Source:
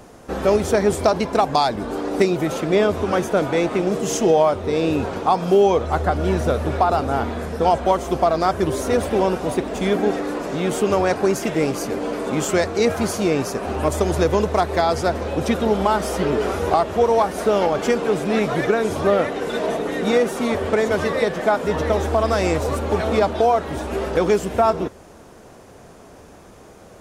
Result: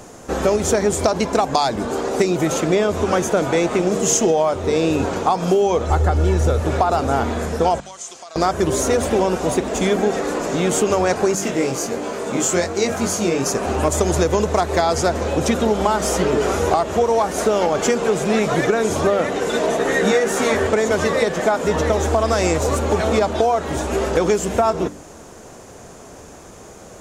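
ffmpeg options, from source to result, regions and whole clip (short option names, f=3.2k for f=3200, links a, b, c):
-filter_complex "[0:a]asettb=1/sr,asplit=3[a][b][c];[a]atrim=end=5.904[d];[b]atrim=start=5.9:end=6.6,asetpts=PTS-STARTPTS,afade=t=in:d=0.004:c=qsin,afade=t=out:st=0.696:d=0.004:c=qsin,lowshelf=f=110:g=11,aecho=1:1:2.3:0.34,atrim=end_sample=30870[e];[c]atrim=start=6.596[f];[d][e]acrossfade=d=0.004:c1=hsin:c2=qsin[g];[g][f]acrossfade=d=0.004:c1=qsin:c2=hsin,asettb=1/sr,asplit=3[h][i][j];[h]atrim=end=7.804[k];[i]atrim=start=7.8:end=8.36,asetpts=PTS-STARTPTS,afade=t=in:d=0.004:c=qsin,afade=t=out:st=0.556:d=0.004:c=qsin,lowpass=f=8k:w=0.5412,lowpass=f=8k:w=1.3066,aderivative,acompressor=threshold=-37dB:ratio=6:attack=3.2:release=140:knee=1:detection=peak[l];[j]atrim=start=8.356[m];[k][l]acrossfade=d=0.004:c1=hsin:c2=qsin[n];[n][m]acrossfade=d=0.004:c1=qsin:c2=hsin,asettb=1/sr,asplit=3[o][p][q];[o]atrim=end=11.354[r];[p]atrim=start=11.35:end=13.46,asetpts=PTS-STARTPTS,afade=t=in:d=0.004:c=qsin,afade=t=out:st=2.106:d=0.004:c=qsin,highpass=77,aeval=exprs='sgn(val(0))*max(abs(val(0))-0.00282,0)':c=same,flanger=delay=20:depth=3.4:speed=1.3[s];[q]atrim=start=13.456[t];[r][s]acrossfade=d=0.004:c1=hsin:c2=qsin[u];[u][t]acrossfade=d=0.004:c1=qsin:c2=hsin,asettb=1/sr,asplit=3[v][w][x];[v]atrim=end=19.784[y];[w]atrim=start=19.78:end=20.67,asetpts=PTS-STARTPTS,afade=t=in:d=0.004:c=qsin,afade=t=out:st=0.886:d=0.004:c=qsin,equalizer=f=1.7k:t=o:w=0.33:g=8.5,asplit=2[z][aa];[aa]adelay=15,volume=-2dB[ab];[z][ab]amix=inputs=2:normalize=0,atrim=end_sample=39249[ac];[x]atrim=start=20.666[ad];[y][ac]acrossfade=d=0.004:c1=hsin:c2=qsin[ae];[ae][ad]acrossfade=d=0.004:c1=qsin:c2=hsin,equalizer=f=6.9k:w=2.3:g=9.5,bandreject=f=49.02:t=h:w=4,bandreject=f=98.04:t=h:w=4,bandreject=f=147.06:t=h:w=4,bandreject=f=196.08:t=h:w=4,bandreject=f=245.1:t=h:w=4,bandreject=f=294.12:t=h:w=4,acompressor=threshold=-17dB:ratio=6,volume=4dB"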